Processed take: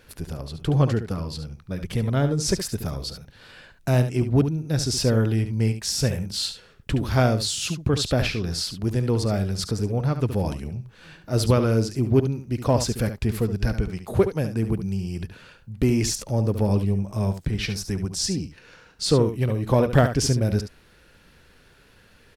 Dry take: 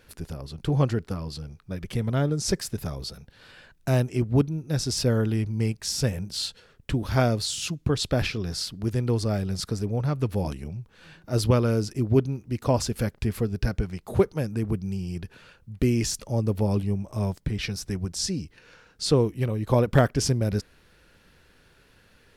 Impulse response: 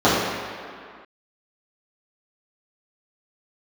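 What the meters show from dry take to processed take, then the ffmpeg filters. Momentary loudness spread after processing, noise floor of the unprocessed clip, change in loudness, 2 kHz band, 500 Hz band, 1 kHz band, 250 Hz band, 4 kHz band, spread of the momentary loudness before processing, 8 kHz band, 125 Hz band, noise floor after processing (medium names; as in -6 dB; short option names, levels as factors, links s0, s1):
12 LU, -59 dBFS, +2.5 dB, +2.5 dB, +2.0 dB, +2.5 dB, +2.5 dB, +3.0 dB, 11 LU, +3.0 dB, +2.5 dB, -55 dBFS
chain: -filter_complex "[0:a]asplit=2[s0][s1];[s1]asoftclip=type=tanh:threshold=0.0944,volume=0.398[s2];[s0][s2]amix=inputs=2:normalize=0,aecho=1:1:71:0.316"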